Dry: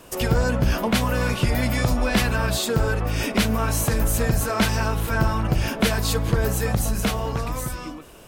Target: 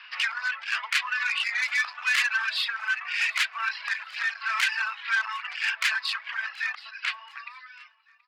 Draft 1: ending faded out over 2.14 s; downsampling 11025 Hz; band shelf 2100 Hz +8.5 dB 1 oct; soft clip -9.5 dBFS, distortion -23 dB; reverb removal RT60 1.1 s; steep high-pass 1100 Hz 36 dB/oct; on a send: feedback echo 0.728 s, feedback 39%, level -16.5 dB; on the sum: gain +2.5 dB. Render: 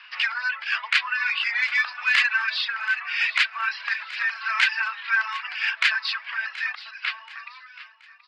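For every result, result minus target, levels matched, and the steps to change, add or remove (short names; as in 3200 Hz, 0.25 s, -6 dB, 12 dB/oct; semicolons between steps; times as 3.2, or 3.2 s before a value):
soft clip: distortion -12 dB; echo-to-direct +7.5 dB
change: soft clip -19 dBFS, distortion -11 dB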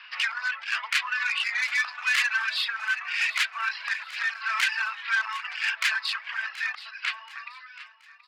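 echo-to-direct +7.5 dB
change: feedback echo 0.728 s, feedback 39%, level -24 dB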